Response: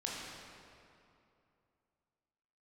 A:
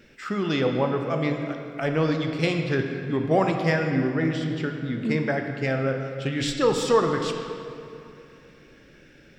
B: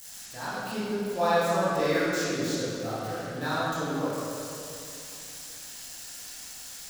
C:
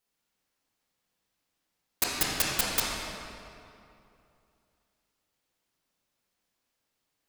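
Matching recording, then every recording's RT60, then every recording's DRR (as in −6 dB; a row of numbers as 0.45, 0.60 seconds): C; 2.7, 2.7, 2.7 seconds; 3.5, −11.0, −4.5 decibels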